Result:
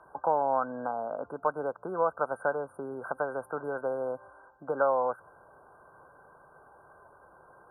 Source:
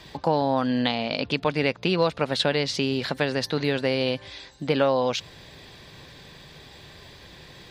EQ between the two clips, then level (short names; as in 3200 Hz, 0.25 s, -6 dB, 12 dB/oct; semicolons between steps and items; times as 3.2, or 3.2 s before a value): brick-wall FIR band-stop 1600–8900 Hz; three-band isolator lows -20 dB, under 520 Hz, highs -23 dB, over 7400 Hz; 0.0 dB